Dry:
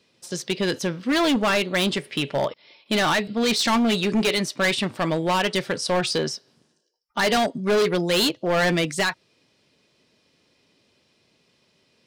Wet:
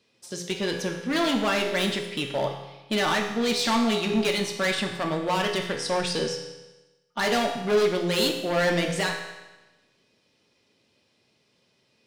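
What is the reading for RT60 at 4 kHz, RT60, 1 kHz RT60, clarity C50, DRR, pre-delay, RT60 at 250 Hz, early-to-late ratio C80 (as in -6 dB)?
1.1 s, 1.1 s, 1.1 s, 5.5 dB, 2.0 dB, 6 ms, 1.1 s, 7.5 dB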